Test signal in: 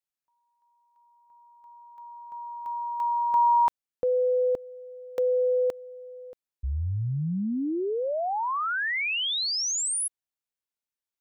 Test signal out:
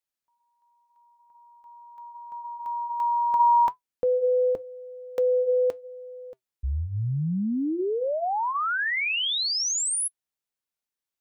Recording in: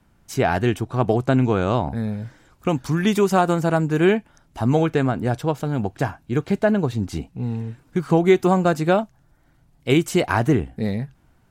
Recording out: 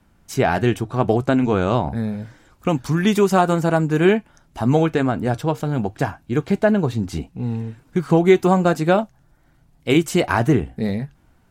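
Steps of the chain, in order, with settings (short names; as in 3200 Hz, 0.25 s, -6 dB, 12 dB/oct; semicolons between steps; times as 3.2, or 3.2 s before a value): flange 0.8 Hz, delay 3.4 ms, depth 2.2 ms, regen -81%; gain +6 dB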